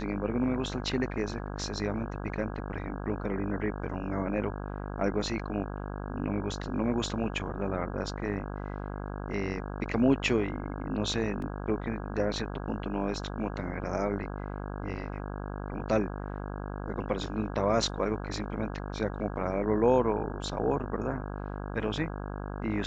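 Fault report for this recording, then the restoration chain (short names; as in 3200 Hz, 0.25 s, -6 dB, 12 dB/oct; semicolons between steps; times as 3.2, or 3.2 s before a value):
buzz 50 Hz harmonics 33 -37 dBFS
11.42 gap 3.2 ms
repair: de-hum 50 Hz, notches 33; interpolate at 11.42, 3.2 ms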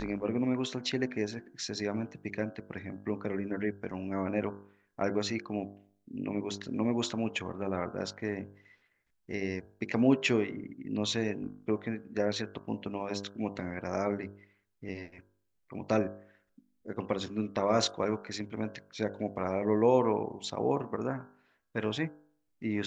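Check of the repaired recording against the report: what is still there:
none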